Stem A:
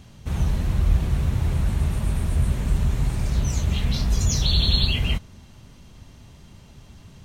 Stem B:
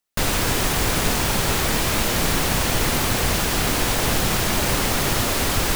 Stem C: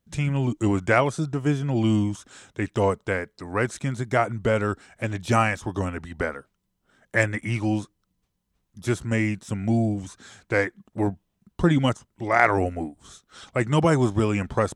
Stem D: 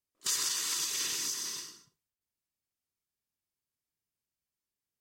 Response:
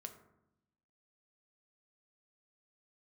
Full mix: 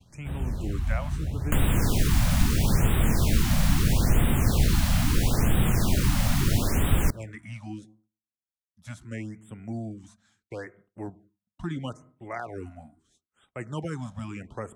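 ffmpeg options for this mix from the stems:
-filter_complex "[0:a]volume=0.355,asplit=2[s0][s1];[s1]volume=0.224[s2];[1:a]adelay=1350,volume=1.26,asplit=2[s3][s4];[s4]volume=0.282[s5];[2:a]volume=0.178,asplit=2[s6][s7];[s7]volume=0.562[s8];[3:a]acrusher=samples=39:mix=1:aa=0.000001,acompressor=threshold=0.00794:ratio=6,volume=0.562[s9];[4:a]atrim=start_sample=2205[s10];[s2][s5][s8]amix=inputs=3:normalize=0[s11];[s11][s10]afir=irnorm=-1:irlink=0[s12];[s0][s3][s6][s9][s12]amix=inputs=5:normalize=0,agate=range=0.0224:threshold=0.00282:ratio=3:detection=peak,acrossover=split=250[s13][s14];[s14]acompressor=threshold=0.0355:ratio=10[s15];[s13][s15]amix=inputs=2:normalize=0,afftfilt=real='re*(1-between(b*sr/1024,360*pow(5500/360,0.5+0.5*sin(2*PI*0.76*pts/sr))/1.41,360*pow(5500/360,0.5+0.5*sin(2*PI*0.76*pts/sr))*1.41))':imag='im*(1-between(b*sr/1024,360*pow(5500/360,0.5+0.5*sin(2*PI*0.76*pts/sr))/1.41,360*pow(5500/360,0.5+0.5*sin(2*PI*0.76*pts/sr))*1.41))':win_size=1024:overlap=0.75"

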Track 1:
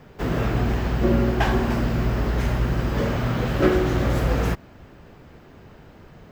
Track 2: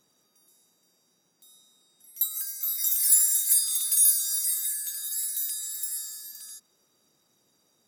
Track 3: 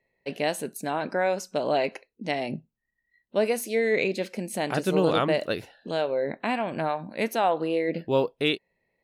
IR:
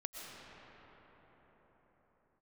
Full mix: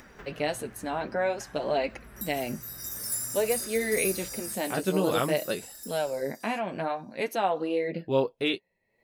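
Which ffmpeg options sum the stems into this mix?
-filter_complex "[0:a]equalizer=f=1700:w=1.1:g=10.5,acompressor=threshold=0.0447:ratio=6,volume=0.168[s0];[1:a]equalizer=f=5400:t=o:w=0.21:g=9.5,volume=0.376[s1];[2:a]volume=1.06[s2];[s0][s1][s2]amix=inputs=3:normalize=0,acompressor=mode=upward:threshold=0.0141:ratio=2.5,flanger=delay=3.2:depth=8.1:regen=-24:speed=0.52:shape=triangular"

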